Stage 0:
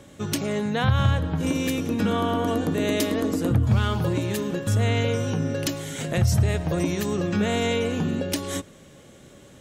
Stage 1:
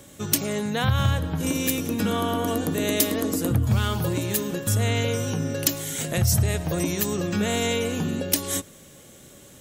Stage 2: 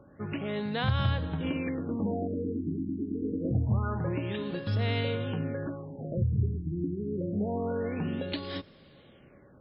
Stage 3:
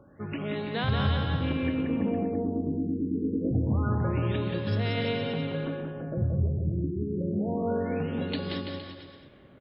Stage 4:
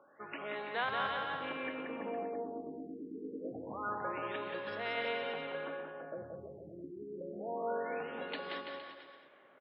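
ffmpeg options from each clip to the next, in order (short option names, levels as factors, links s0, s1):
-af "aemphasis=mode=production:type=50fm,volume=0.891"
-af "afftfilt=real='re*lt(b*sr/1024,380*pow(5400/380,0.5+0.5*sin(2*PI*0.26*pts/sr)))':imag='im*lt(b*sr/1024,380*pow(5400/380,0.5+0.5*sin(2*PI*0.26*pts/sr)))':win_size=1024:overlap=0.75,volume=0.531"
-af "aecho=1:1:180|333|463|573.6|667.6:0.631|0.398|0.251|0.158|0.1"
-af "highpass=730,lowpass=2100,volume=1.12"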